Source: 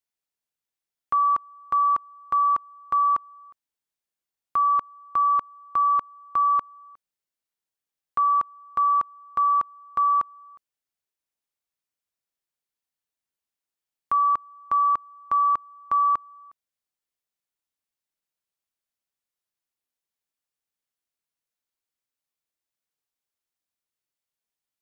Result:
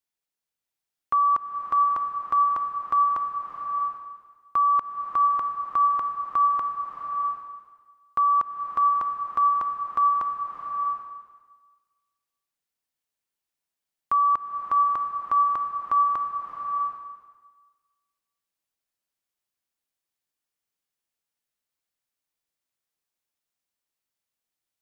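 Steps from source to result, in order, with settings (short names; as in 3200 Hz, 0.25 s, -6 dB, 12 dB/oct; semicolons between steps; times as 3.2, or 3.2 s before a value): bloom reverb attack 0.69 s, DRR 2.5 dB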